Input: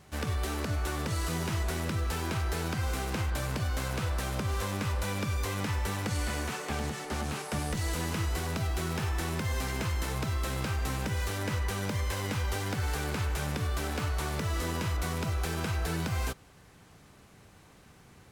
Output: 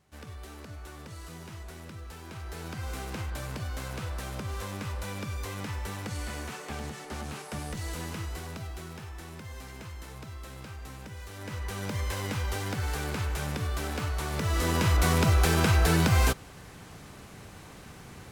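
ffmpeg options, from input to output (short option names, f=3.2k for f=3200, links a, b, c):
-af "volume=16dB,afade=t=in:st=2.25:d=0.71:silence=0.398107,afade=t=out:st=8.02:d=1.03:silence=0.446684,afade=t=in:st=11.29:d=0.74:silence=0.281838,afade=t=in:st=14.28:d=0.83:silence=0.354813"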